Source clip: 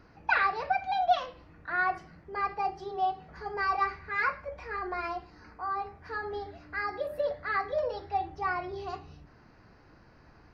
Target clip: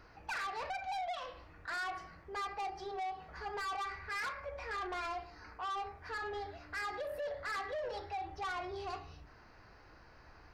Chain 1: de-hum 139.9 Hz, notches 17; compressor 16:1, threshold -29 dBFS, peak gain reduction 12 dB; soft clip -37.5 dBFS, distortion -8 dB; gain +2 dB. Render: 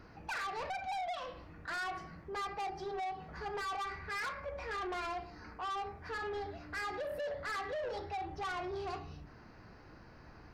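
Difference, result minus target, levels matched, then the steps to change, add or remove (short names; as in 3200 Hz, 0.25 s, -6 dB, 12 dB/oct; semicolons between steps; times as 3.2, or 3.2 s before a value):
250 Hz band +4.5 dB
add after compressor: bell 190 Hz -10.5 dB 2 oct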